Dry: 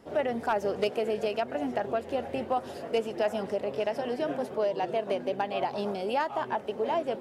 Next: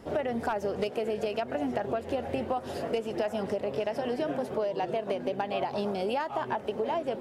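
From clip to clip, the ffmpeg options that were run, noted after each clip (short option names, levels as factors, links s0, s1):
-af "lowshelf=f=100:g=8.5,acompressor=threshold=0.0251:ratio=6,volume=1.78"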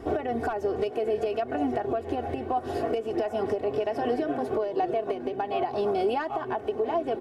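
-af "highshelf=f=2200:g=-9,aecho=1:1:2.7:0.71,alimiter=level_in=1.06:limit=0.0631:level=0:latency=1:release=493,volume=0.944,volume=2.24"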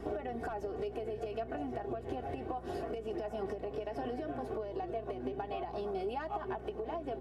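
-af "acompressor=threshold=0.0251:ratio=6,aeval=exprs='val(0)+0.00501*(sin(2*PI*60*n/s)+sin(2*PI*2*60*n/s)/2+sin(2*PI*3*60*n/s)/3+sin(2*PI*4*60*n/s)/4+sin(2*PI*5*60*n/s)/5)':c=same,flanger=delay=4.8:depth=4.2:regen=72:speed=0.32:shape=sinusoidal,volume=1.12"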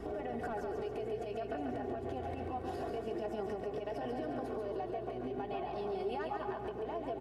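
-filter_complex "[0:a]alimiter=level_in=2.37:limit=0.0631:level=0:latency=1,volume=0.422,asplit=2[s0][s1];[s1]aecho=0:1:140|280|420|560|700|840:0.562|0.287|0.146|0.0746|0.038|0.0194[s2];[s0][s2]amix=inputs=2:normalize=0"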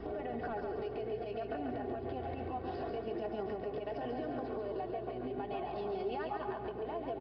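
-af "aresample=11025,aresample=44100"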